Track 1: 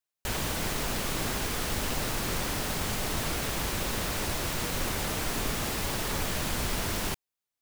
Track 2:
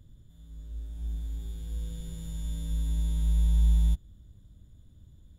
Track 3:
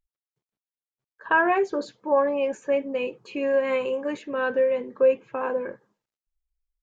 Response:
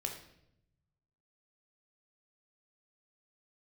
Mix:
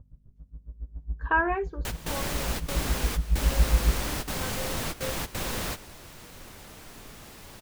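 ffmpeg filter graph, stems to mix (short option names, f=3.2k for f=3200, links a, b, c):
-filter_complex "[0:a]adelay=1600,volume=-0.5dB[a];[1:a]lowpass=f=1.2k:w=0.5412,lowpass=f=1.2k:w=1.3066,aeval=exprs='val(0)*pow(10,-35*(0.5-0.5*cos(2*PI*7.2*n/s))/20)':c=same,volume=2dB,asplit=2[b][c];[c]volume=-7dB[d];[2:a]acrossover=split=2800[e][f];[f]acompressor=threshold=-55dB:ratio=4:attack=1:release=60[g];[e][g]amix=inputs=2:normalize=0,equalizer=f=580:w=3.1:g=-6,volume=-2dB,afade=t=out:st=1.34:d=0.45:silence=0.251189,asplit=2[h][i];[i]apad=whole_len=406298[j];[a][j]sidechaingate=range=-15dB:threshold=-52dB:ratio=16:detection=peak[k];[3:a]atrim=start_sample=2205[l];[d][l]afir=irnorm=-1:irlink=0[m];[k][b][h][m]amix=inputs=4:normalize=0,aeval=exprs='val(0)+0.000794*(sin(2*PI*50*n/s)+sin(2*PI*2*50*n/s)/2+sin(2*PI*3*50*n/s)/3+sin(2*PI*4*50*n/s)/4+sin(2*PI*5*50*n/s)/5)':c=same"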